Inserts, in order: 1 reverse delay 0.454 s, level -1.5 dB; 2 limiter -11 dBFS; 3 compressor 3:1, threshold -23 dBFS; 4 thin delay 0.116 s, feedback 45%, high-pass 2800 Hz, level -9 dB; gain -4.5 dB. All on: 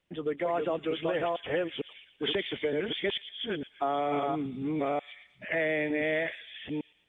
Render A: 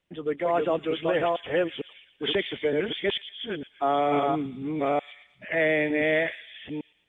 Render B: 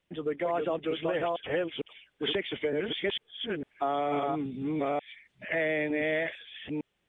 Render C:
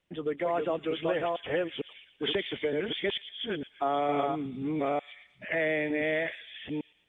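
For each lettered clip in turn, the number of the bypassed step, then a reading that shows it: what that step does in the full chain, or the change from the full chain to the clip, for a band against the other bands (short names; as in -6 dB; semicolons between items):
3, crest factor change -2.0 dB; 4, echo-to-direct -16.0 dB to none; 2, crest factor change +1.5 dB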